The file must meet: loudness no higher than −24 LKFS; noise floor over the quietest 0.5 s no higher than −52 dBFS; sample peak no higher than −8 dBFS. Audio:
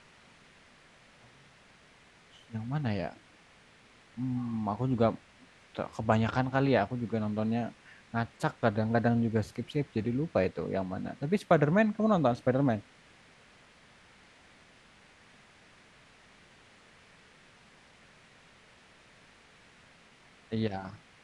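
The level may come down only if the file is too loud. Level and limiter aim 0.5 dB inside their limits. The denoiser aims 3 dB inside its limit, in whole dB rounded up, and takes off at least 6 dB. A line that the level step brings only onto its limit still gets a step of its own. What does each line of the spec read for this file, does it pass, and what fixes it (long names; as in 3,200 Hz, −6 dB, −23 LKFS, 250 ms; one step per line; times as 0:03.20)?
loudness −30.5 LKFS: in spec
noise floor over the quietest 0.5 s −59 dBFS: in spec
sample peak −10.5 dBFS: in spec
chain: no processing needed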